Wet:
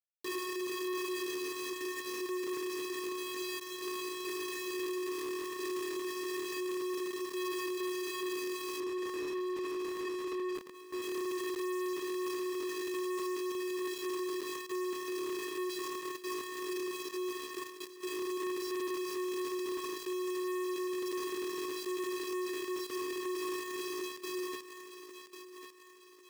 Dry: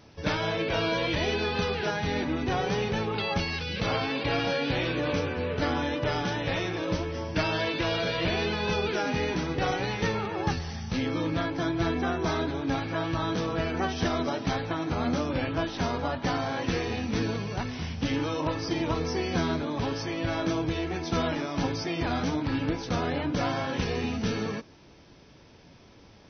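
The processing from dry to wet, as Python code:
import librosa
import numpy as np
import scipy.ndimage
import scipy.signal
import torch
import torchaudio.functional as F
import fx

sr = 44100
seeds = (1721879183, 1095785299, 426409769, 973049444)

y = fx.rattle_buzz(x, sr, strikes_db=-32.0, level_db=-26.0)
y = fx.vocoder(y, sr, bands=16, carrier='square', carrier_hz=365.0)
y = fx.tilt_eq(y, sr, slope=2.5)
y = fx.quant_companded(y, sr, bits=2)
y = fx.over_compress(y, sr, threshold_db=-31.0, ratio=-1.0)
y = fx.lowpass(y, sr, hz=1200.0, slope=6, at=(8.8, 11.02))
y = fx.echo_thinned(y, sr, ms=1096, feedback_pct=42, hz=230.0, wet_db=-21.0)
y = np.clip(10.0 ** (34.5 / 20.0) * y, -1.0, 1.0) / 10.0 ** (34.5 / 20.0)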